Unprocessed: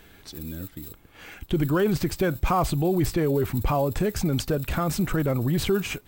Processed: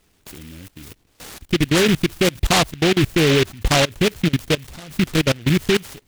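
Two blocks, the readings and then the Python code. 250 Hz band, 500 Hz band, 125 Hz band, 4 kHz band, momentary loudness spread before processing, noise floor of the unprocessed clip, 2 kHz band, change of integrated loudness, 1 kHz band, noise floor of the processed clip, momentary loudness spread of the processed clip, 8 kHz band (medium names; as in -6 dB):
+5.5 dB, +5.0 dB, +4.0 dB, +15.0 dB, 15 LU, -53 dBFS, +12.0 dB, +6.5 dB, +3.0 dB, -61 dBFS, 8 LU, +9.5 dB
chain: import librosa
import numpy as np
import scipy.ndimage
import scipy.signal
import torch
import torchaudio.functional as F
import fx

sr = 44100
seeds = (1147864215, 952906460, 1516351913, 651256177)

y = fx.level_steps(x, sr, step_db=23)
y = fx.noise_mod_delay(y, sr, seeds[0], noise_hz=2400.0, depth_ms=0.2)
y = F.gain(torch.from_numpy(y), 8.5).numpy()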